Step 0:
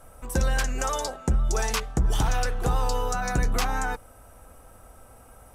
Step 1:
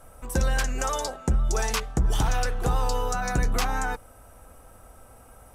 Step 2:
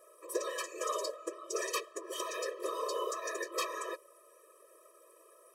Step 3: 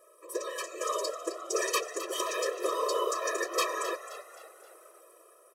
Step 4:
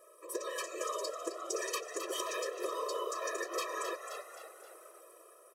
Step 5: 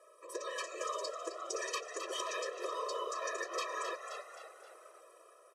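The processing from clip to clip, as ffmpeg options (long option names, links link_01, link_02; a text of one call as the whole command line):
ffmpeg -i in.wav -af anull out.wav
ffmpeg -i in.wav -af "afftfilt=real='hypot(re,im)*cos(2*PI*random(0))':imag='hypot(re,im)*sin(2*PI*random(1))':win_size=512:overlap=0.75,afftfilt=real='re*eq(mod(floor(b*sr/1024/330),2),1)':imag='im*eq(mod(floor(b*sr/1024/330),2),1)':win_size=1024:overlap=0.75,volume=2dB" out.wav
ffmpeg -i in.wav -filter_complex "[0:a]dynaudnorm=framelen=380:gausssize=5:maxgain=6dB,asplit=2[link_01][link_02];[link_02]asplit=4[link_03][link_04][link_05][link_06];[link_03]adelay=263,afreqshift=63,volume=-12dB[link_07];[link_04]adelay=526,afreqshift=126,volume=-19.5dB[link_08];[link_05]adelay=789,afreqshift=189,volume=-27.1dB[link_09];[link_06]adelay=1052,afreqshift=252,volume=-34.6dB[link_10];[link_07][link_08][link_09][link_10]amix=inputs=4:normalize=0[link_11];[link_01][link_11]amix=inputs=2:normalize=0" out.wav
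ffmpeg -i in.wav -af "acompressor=threshold=-34dB:ratio=5" out.wav
ffmpeg -i in.wav -af "highpass=460,lowpass=6900" out.wav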